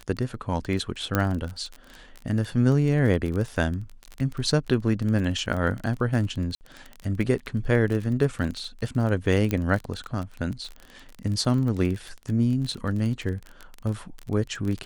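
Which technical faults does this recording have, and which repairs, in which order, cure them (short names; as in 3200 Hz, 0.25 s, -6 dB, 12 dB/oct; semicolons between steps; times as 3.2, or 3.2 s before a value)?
crackle 23/s -29 dBFS
1.15 pop -8 dBFS
6.55–6.61 gap 59 ms
9.51 pop -12 dBFS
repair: de-click; interpolate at 6.55, 59 ms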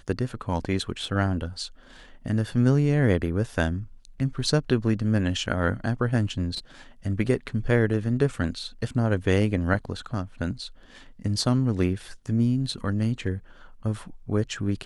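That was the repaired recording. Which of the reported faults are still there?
none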